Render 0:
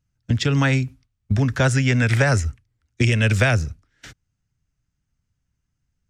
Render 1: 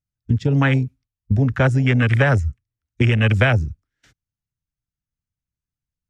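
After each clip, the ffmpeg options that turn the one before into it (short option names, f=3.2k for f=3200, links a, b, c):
-af "afwtdn=0.0794,volume=2dB"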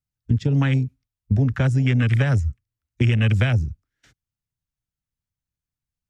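-filter_complex "[0:a]acrossover=split=270|3000[a][b][c];[b]acompressor=threshold=-29dB:ratio=3[d];[a][d][c]amix=inputs=3:normalize=0,volume=-1dB"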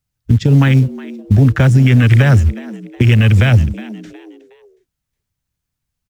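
-filter_complex "[0:a]asplit=2[a][b];[b]acrusher=bits=5:mode=log:mix=0:aa=0.000001,volume=-10dB[c];[a][c]amix=inputs=2:normalize=0,asplit=4[d][e][f][g];[e]adelay=365,afreqshift=100,volume=-21dB[h];[f]adelay=730,afreqshift=200,volume=-30.1dB[i];[g]adelay=1095,afreqshift=300,volume=-39.2dB[j];[d][h][i][j]amix=inputs=4:normalize=0,alimiter=level_in=9.5dB:limit=-1dB:release=50:level=0:latency=1,volume=-1dB"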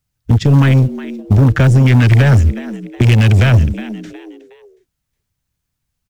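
-af "aeval=exprs='0.841*(cos(1*acos(clip(val(0)/0.841,-1,1)))-cos(1*PI/2))+0.075*(cos(5*acos(clip(val(0)/0.841,-1,1)))-cos(5*PI/2))+0.0376*(cos(8*acos(clip(val(0)/0.841,-1,1)))-cos(8*PI/2))':c=same"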